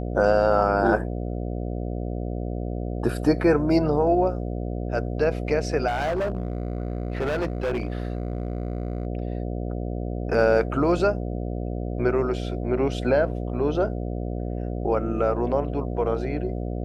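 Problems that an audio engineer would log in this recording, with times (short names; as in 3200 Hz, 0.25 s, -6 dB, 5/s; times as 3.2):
buzz 60 Hz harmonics 12 -29 dBFS
5.87–9.07 clipped -22 dBFS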